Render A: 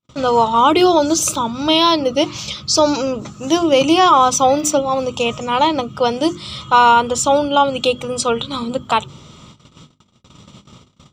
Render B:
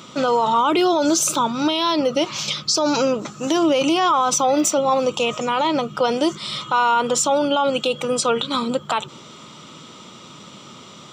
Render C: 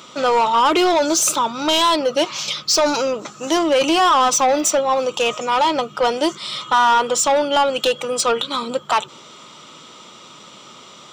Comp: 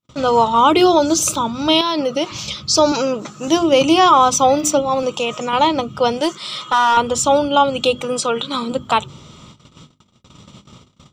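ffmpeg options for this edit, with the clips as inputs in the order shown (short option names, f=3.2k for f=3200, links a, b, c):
-filter_complex "[1:a]asplit=4[a][b][c][d];[0:a]asplit=6[e][f][g][h][i][j];[e]atrim=end=1.812[k];[a]atrim=start=1.808:end=2.322[l];[f]atrim=start=2.318:end=2.922[m];[b]atrim=start=2.918:end=3.482[n];[g]atrim=start=3.478:end=5.032[o];[c]atrim=start=5.028:end=5.532[p];[h]atrim=start=5.528:end=6.212[q];[2:a]atrim=start=6.208:end=6.972[r];[i]atrim=start=6.968:end=8.012[s];[d]atrim=start=8.008:end=8.722[t];[j]atrim=start=8.718[u];[k][l]acrossfade=d=0.004:c1=hsin:c2=hsin[v];[v][m]acrossfade=d=0.004:c1=hsin:c2=hsin[w];[w][n]acrossfade=d=0.004:c1=hsin:c2=hsin[x];[x][o]acrossfade=d=0.004:c1=hsin:c2=hsin[y];[y][p]acrossfade=d=0.004:c1=hsin:c2=hsin[z];[z][q]acrossfade=d=0.004:c1=hsin:c2=hsin[aa];[aa][r]acrossfade=d=0.004:c1=hsin:c2=hsin[ab];[ab][s]acrossfade=d=0.004:c1=hsin:c2=hsin[ac];[ac][t]acrossfade=d=0.004:c1=hsin:c2=hsin[ad];[ad][u]acrossfade=d=0.004:c1=hsin:c2=hsin"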